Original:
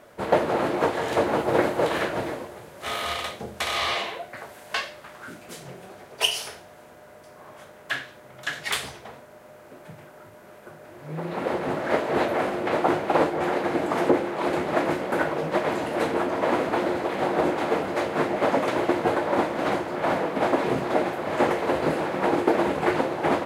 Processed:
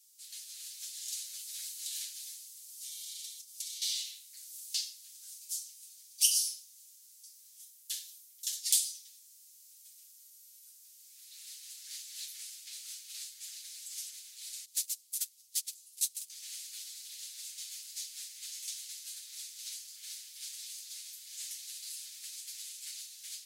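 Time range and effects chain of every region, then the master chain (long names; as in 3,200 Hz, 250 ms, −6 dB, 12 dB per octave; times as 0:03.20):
0:02.68–0:03.82: comb filter 5.3 ms, depth 68% + downward compressor, threshold −35 dBFS
0:07.57–0:08.56: parametric band 13,000 Hz +6.5 dB 0.88 octaves + one half of a high-frequency compander decoder only
0:14.65–0:16.30: noise gate −23 dBFS, range −27 dB + spectral tilt +4.5 dB per octave
whole clip: automatic gain control gain up to 4 dB; inverse Chebyshev high-pass filter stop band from 920 Hz, stop band 80 dB; comb filter 7.5 ms; level +3 dB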